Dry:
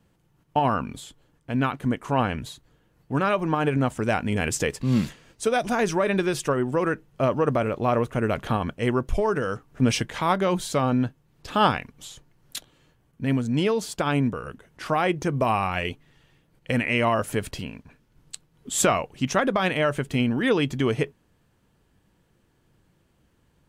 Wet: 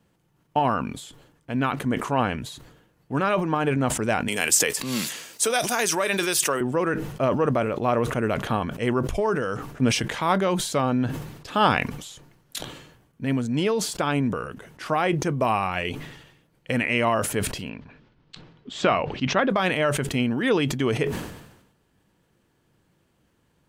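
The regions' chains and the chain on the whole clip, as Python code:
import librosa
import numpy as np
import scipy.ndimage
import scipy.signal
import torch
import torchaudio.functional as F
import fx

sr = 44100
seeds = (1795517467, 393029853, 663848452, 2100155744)

y = fx.chain(x, sr, fx.riaa(side='recording'),
    fx.band_squash(depth_pct=40), at=(4.28, 6.61))
y = fx.chain(y, sr, fx.lowpass(hz=4500.0, slope=24),
    fx.hum_notches(base_hz=50, count=3), at=(17.69, 19.5))
y = fx.low_shelf(y, sr, hz=73.0, db=-10.0)
y = fx.sustainer(y, sr, db_per_s=62.0)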